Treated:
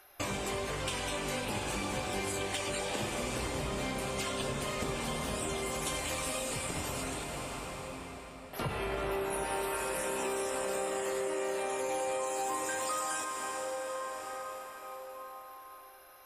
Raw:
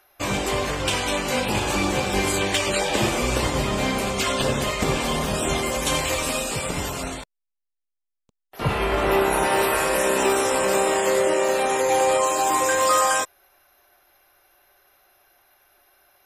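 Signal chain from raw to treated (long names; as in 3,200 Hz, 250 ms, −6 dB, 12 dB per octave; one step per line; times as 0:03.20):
parametric band 9,400 Hz +8.5 dB 0.22 octaves
convolution reverb RT60 5.2 s, pre-delay 5 ms, DRR 5.5 dB
downward compressor 4 to 1, threshold −35 dBFS, peak gain reduction 17 dB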